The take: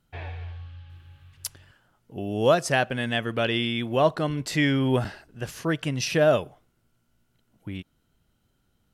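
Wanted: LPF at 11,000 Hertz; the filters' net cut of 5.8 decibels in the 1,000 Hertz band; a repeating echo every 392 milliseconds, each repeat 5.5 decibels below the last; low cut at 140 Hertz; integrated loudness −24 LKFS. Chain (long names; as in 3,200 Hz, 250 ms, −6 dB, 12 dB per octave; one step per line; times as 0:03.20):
high-pass filter 140 Hz
low-pass filter 11,000 Hz
parametric band 1,000 Hz −9 dB
repeating echo 392 ms, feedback 53%, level −5.5 dB
level +2.5 dB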